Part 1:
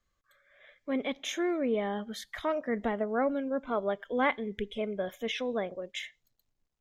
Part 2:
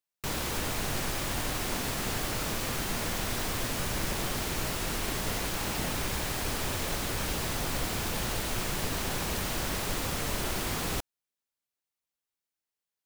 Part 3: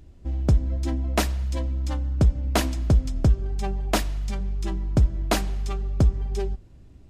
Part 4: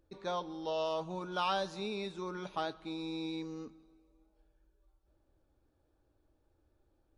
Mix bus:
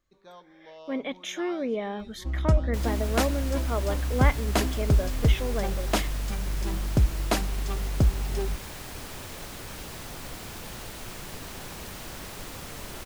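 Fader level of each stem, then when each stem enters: 0.0, -7.5, -2.5, -12.5 dB; 0.00, 2.50, 2.00, 0.00 s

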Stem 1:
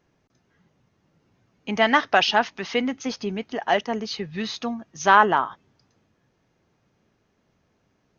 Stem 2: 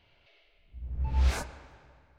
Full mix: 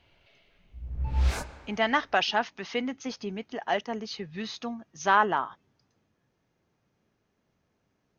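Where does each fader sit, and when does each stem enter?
-6.5, +0.5 dB; 0.00, 0.00 s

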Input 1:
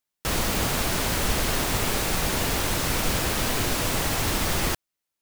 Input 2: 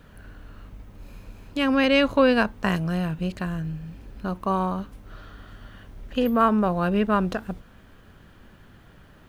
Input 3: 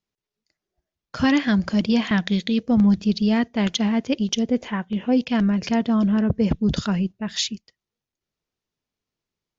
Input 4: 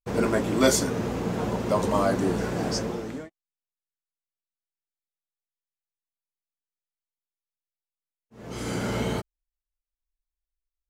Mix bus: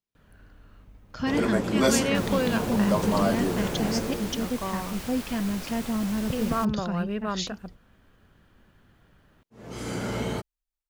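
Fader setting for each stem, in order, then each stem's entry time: -13.5, -8.5, -8.5, -2.0 dB; 1.90, 0.15, 0.00, 1.20 s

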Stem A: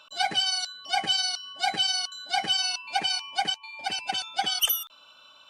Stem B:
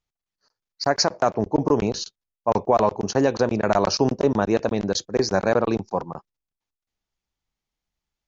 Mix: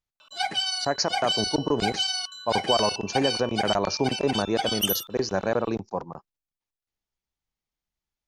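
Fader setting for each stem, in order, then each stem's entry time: -1.5, -5.0 dB; 0.20, 0.00 s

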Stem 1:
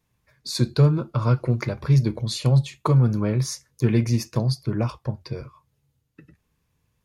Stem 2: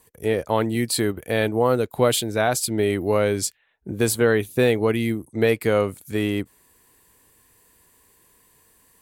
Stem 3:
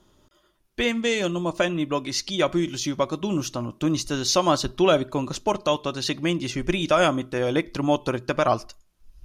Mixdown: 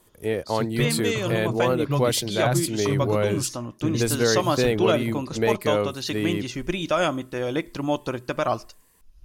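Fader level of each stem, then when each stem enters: -9.5, -3.5, -3.0 dB; 0.00, 0.00, 0.00 s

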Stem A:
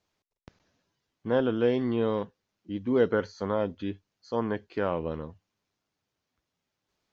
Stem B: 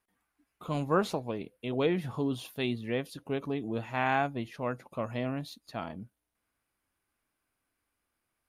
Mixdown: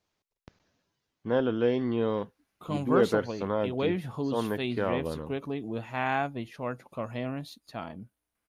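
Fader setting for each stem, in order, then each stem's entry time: -1.0, -0.5 dB; 0.00, 2.00 s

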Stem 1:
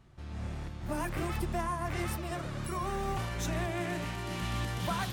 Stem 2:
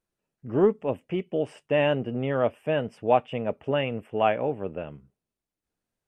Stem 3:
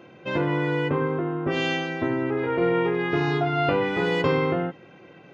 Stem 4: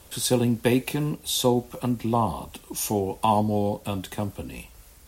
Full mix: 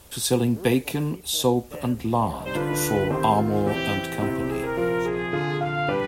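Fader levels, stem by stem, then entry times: -8.5, -18.0, -2.0, +0.5 dB; 1.60, 0.00, 2.20, 0.00 s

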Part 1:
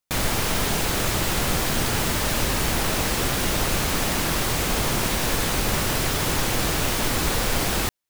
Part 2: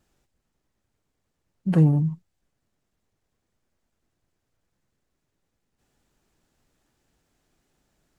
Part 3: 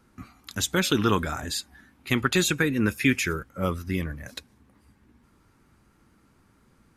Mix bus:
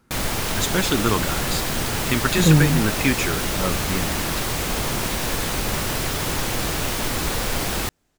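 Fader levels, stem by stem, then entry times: -1.0, +2.5, +1.0 dB; 0.00, 0.70, 0.00 s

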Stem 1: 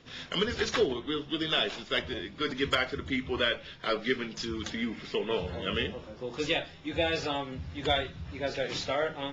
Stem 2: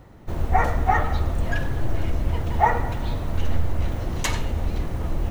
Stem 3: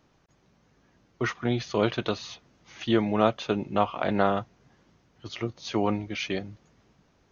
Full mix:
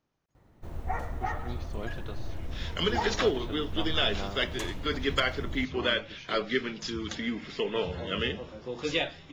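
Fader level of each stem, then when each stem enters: +0.5, -13.0, -15.5 dB; 2.45, 0.35, 0.00 s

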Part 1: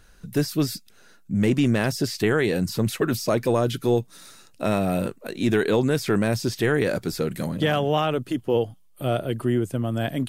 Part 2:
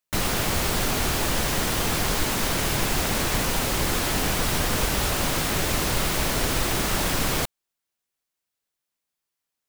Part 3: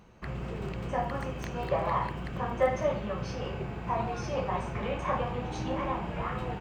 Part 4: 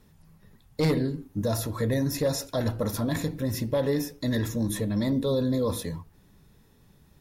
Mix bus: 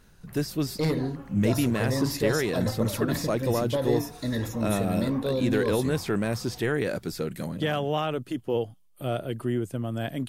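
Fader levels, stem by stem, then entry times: -5.0 dB, off, -14.0 dB, -2.0 dB; 0.00 s, off, 0.05 s, 0.00 s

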